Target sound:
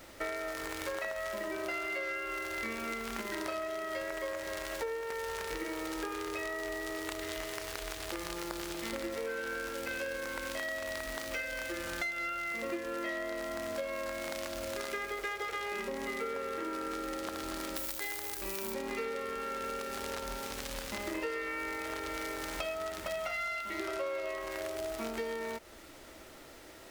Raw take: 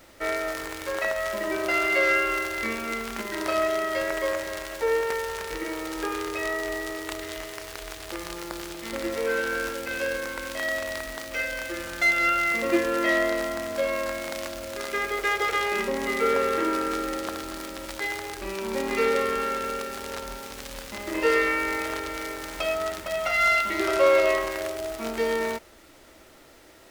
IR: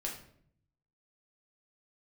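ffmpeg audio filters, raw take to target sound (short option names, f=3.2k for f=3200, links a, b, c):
-filter_complex "[0:a]asettb=1/sr,asplit=3[a][b][c];[a]atrim=end=17.764[d];[b]atrim=start=17.76:end=18.74,asetpts=PTS-STARTPTS,afade=t=in:d=0.004:c=qsin,afade=t=out:st=0.976:d=0.004:c=qsin,aemphasis=mode=production:type=50fm[e];[c]atrim=start=18.736[f];[d][e]acrossfade=d=0.004:c1=hsin:c2=qsin[g];[g][f]acrossfade=d=0.004:c1=qsin:c2=hsin,acompressor=threshold=-34dB:ratio=10"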